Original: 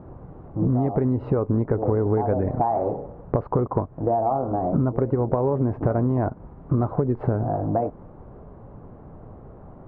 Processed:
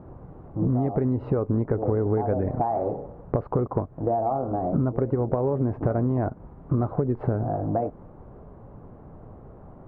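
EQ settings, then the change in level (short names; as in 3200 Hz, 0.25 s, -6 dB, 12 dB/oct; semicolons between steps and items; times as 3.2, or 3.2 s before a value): dynamic EQ 970 Hz, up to -4 dB, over -39 dBFS, Q 4; -2.0 dB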